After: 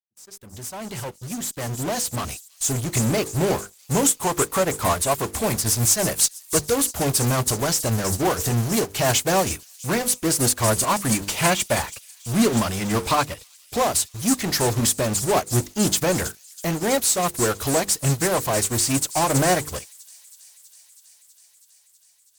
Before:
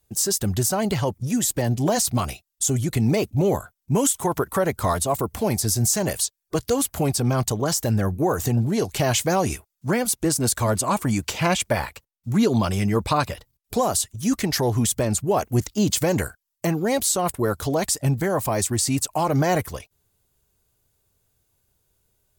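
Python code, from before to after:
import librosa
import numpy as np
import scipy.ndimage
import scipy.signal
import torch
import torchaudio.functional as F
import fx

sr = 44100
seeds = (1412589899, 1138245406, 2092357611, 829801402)

p1 = fx.fade_in_head(x, sr, length_s=3.36)
p2 = fx.low_shelf(p1, sr, hz=500.0, db=-3.0)
p3 = fx.hum_notches(p2, sr, base_hz=50, count=10)
p4 = fx.fuzz(p3, sr, gain_db=45.0, gate_db=-50.0)
p5 = p3 + (p4 * 10.0 ** (-8.0 / 20.0))
p6 = fx.transient(p5, sr, attack_db=-1, sustain_db=-6)
p7 = p6 + fx.echo_wet_highpass(p6, sr, ms=324, feedback_pct=80, hz=5000.0, wet_db=-5, dry=0)
y = fx.upward_expand(p7, sr, threshold_db=-26.0, expansion=2.5)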